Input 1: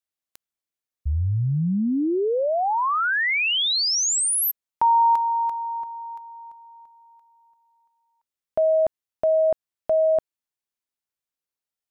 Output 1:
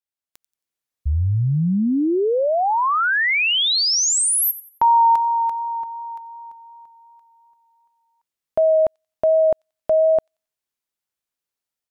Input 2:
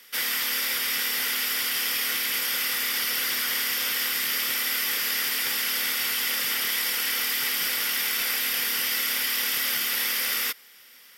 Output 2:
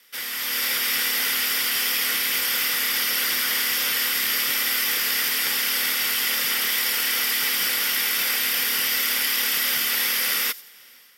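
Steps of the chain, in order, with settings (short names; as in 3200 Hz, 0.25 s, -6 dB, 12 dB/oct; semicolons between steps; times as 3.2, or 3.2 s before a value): AGC gain up to 8 dB; vibrato 2.7 Hz 11 cents; thin delay 90 ms, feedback 31%, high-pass 4900 Hz, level -16 dB; gain -4.5 dB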